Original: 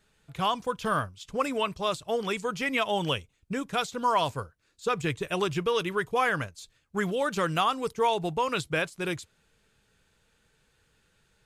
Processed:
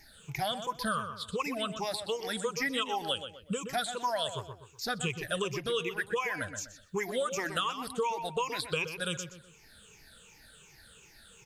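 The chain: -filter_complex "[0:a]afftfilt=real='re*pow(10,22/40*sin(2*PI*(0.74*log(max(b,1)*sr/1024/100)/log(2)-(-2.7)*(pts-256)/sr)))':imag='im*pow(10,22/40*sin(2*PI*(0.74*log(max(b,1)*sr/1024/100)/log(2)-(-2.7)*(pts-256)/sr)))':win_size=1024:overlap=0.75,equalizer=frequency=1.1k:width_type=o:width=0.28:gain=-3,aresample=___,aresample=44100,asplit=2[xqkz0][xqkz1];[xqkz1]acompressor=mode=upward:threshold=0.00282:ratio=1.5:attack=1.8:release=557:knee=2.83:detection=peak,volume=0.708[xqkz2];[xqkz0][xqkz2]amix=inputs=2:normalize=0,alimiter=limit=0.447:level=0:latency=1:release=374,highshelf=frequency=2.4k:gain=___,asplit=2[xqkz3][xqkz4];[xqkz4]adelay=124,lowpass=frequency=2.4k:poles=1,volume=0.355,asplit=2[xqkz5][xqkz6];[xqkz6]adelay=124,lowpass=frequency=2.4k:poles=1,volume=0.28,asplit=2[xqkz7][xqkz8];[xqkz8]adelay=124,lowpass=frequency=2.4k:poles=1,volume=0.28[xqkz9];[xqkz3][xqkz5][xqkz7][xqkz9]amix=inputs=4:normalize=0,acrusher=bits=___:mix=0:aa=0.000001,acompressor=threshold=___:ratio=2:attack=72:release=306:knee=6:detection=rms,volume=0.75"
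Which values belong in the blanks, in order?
32000, 8.5, 11, 0.01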